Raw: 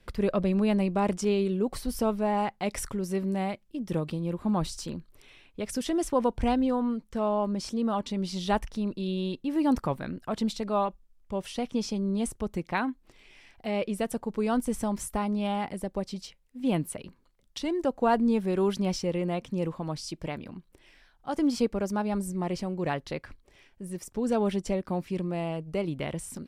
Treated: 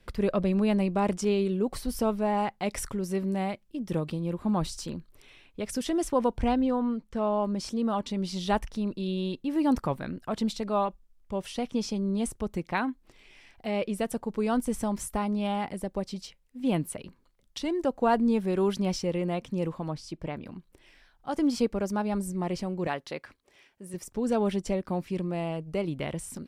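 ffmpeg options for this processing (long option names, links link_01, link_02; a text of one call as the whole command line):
ffmpeg -i in.wav -filter_complex "[0:a]asettb=1/sr,asplit=3[link_01][link_02][link_03];[link_01]atrim=end=6.414[link_04];[link_02]atrim=start=6.41:end=7.34,asetpts=PTS-STARTPTS,afade=type=in:duration=0.004:curve=qsin,afade=type=out:start_time=0.926:duration=0.004:curve=qsin,highshelf=frequency=6800:gain=-8.5[link_05];[link_03]atrim=start=7.336[link_06];[link_04][link_05]acrossfade=duration=0.004:curve1=hsin:curve2=qsin[link_07];[link_07][link_06]acrossfade=duration=0.004:curve1=qsin:curve2=hsin,asettb=1/sr,asplit=3[link_08][link_09][link_10];[link_08]atrim=end=19.904[link_11];[link_09]atrim=start=19.9:end=20.44,asetpts=PTS-STARTPTS,afade=type=in:duration=0.004:curve=qsin,afade=type=out:start_time=0.536:duration=0.004:curve=qsin,highshelf=frequency=3100:gain=-9.5[link_12];[link_10]atrim=start=20.436[link_13];[link_11][link_12]acrossfade=duration=0.004:curve1=hsin:curve2=qsin[link_14];[link_14][link_13]acrossfade=duration=0.004:curve1=qsin:curve2=hsin,asettb=1/sr,asplit=3[link_15][link_16][link_17];[link_15]atrim=end=22.874[link_18];[link_16]atrim=start=22.87:end=23.94,asetpts=PTS-STARTPTS,afade=type=in:duration=0.004:curve=qsin,afade=type=out:start_time=1.066:duration=0.004:curve=qsin,highpass=frequency=330:poles=1[link_19];[link_17]atrim=start=23.936[link_20];[link_18][link_19]acrossfade=duration=0.004:curve1=hsin:curve2=qsin[link_21];[link_21][link_20]acrossfade=duration=0.004:curve1=qsin:curve2=hsin" out.wav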